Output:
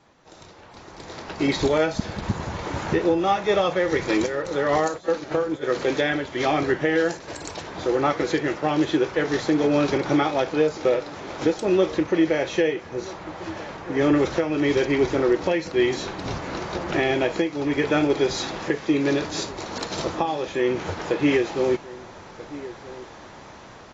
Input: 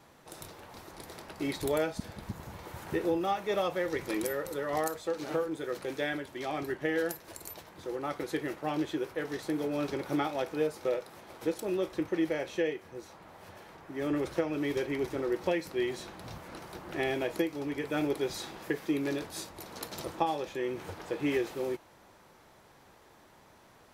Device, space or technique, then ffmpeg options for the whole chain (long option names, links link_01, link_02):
low-bitrate web radio: -filter_complex "[0:a]asplit=3[link_01][link_02][link_03];[link_01]afade=type=out:start_time=4.96:duration=0.02[link_04];[link_02]agate=range=-13dB:threshold=-35dB:ratio=16:detection=peak,afade=type=in:start_time=4.96:duration=0.02,afade=type=out:start_time=5.62:duration=0.02[link_05];[link_03]afade=type=in:start_time=5.62:duration=0.02[link_06];[link_04][link_05][link_06]amix=inputs=3:normalize=0,asplit=2[link_07][link_08];[link_08]adelay=1283,volume=-20dB,highshelf=frequency=4000:gain=-28.9[link_09];[link_07][link_09]amix=inputs=2:normalize=0,dynaudnorm=framelen=120:gausssize=21:maxgain=15dB,alimiter=limit=-10.5dB:level=0:latency=1:release=482" -ar 16000 -c:a aac -b:a 24k